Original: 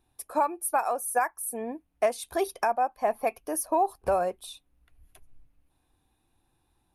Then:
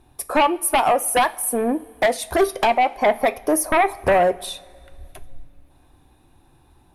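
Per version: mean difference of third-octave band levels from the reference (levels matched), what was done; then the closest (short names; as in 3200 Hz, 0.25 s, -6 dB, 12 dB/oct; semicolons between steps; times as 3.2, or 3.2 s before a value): 6.5 dB: high shelf 2000 Hz -7 dB; in parallel at -2 dB: compressor, threshold -33 dBFS, peak gain reduction 12.5 dB; on the sum: sine folder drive 8 dB, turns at -12.5 dBFS; two-slope reverb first 0.34 s, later 2.5 s, from -18 dB, DRR 12 dB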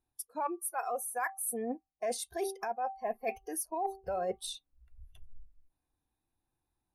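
4.5 dB: de-hum 387.6 Hz, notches 3; spectral noise reduction 19 dB; bell 3100 Hz -8 dB 0.37 oct; reverse; compressor 12:1, threshold -37 dBFS, peak gain reduction 17.5 dB; reverse; gain +5.5 dB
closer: second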